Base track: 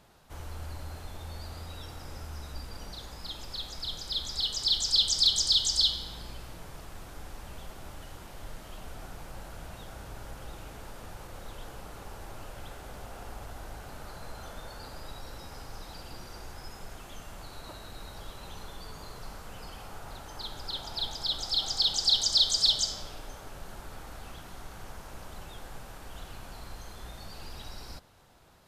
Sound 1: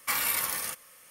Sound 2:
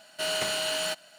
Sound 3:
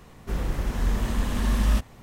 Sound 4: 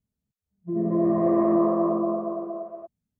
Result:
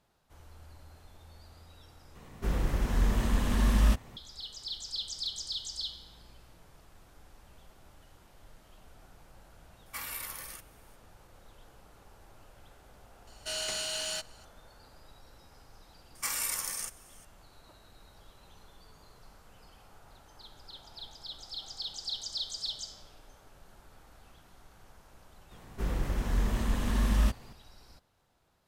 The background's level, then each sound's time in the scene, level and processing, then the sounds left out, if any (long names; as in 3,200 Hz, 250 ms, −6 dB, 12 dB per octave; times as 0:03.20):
base track −12.5 dB
0:02.15: overwrite with 3 −2 dB
0:09.86: mix in 1 −11.5 dB
0:13.27: mix in 2 −10 dB + parametric band 6,200 Hz +10.5 dB 1.5 octaves
0:16.15: mix in 1 −8 dB + flat-topped bell 6,900 Hz +9.5 dB 1 octave
0:25.51: mix in 3 −4 dB
not used: 4